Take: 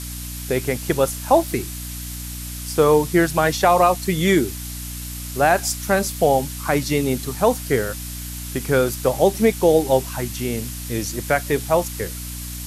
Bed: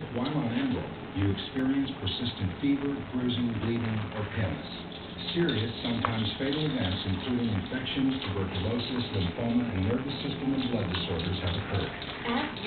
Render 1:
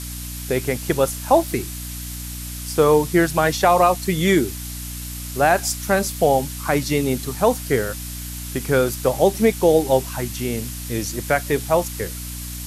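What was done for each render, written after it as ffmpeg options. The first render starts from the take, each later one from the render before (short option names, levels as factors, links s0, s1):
-af anull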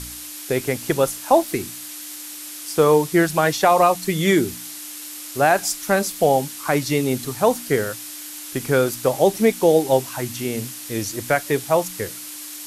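-af "bandreject=f=60:t=h:w=4,bandreject=f=120:t=h:w=4,bandreject=f=180:t=h:w=4,bandreject=f=240:t=h:w=4"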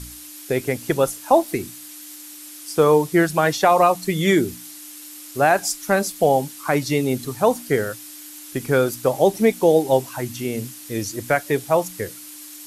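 -af "afftdn=nr=6:nf=-35"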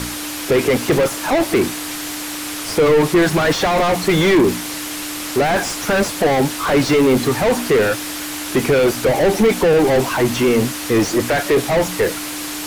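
-filter_complex "[0:a]asplit=2[s0][s1];[s1]highpass=f=720:p=1,volume=70.8,asoftclip=type=tanh:threshold=0.631[s2];[s0][s2]amix=inputs=2:normalize=0,lowpass=f=1200:p=1,volume=0.501,acrossover=split=580|1400[s3][s4][s5];[s4]volume=21.1,asoftclip=hard,volume=0.0473[s6];[s3][s6][s5]amix=inputs=3:normalize=0"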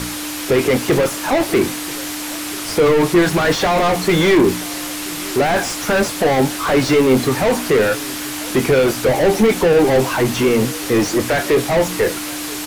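-filter_complex "[0:a]asplit=2[s0][s1];[s1]adelay=23,volume=0.266[s2];[s0][s2]amix=inputs=2:normalize=0,aecho=1:1:981:0.0794"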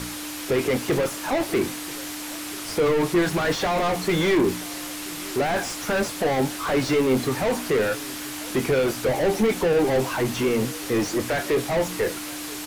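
-af "volume=0.422"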